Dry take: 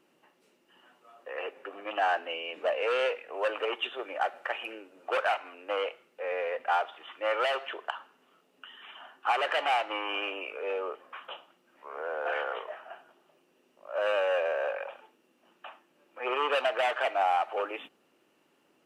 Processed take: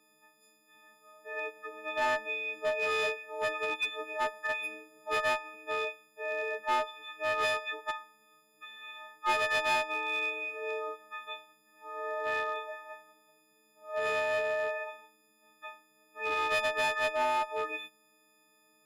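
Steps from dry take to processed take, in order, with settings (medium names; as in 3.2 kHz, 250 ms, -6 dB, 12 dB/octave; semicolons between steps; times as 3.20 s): partials quantised in pitch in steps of 6 st; one-sided clip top -21 dBFS; trim -5.5 dB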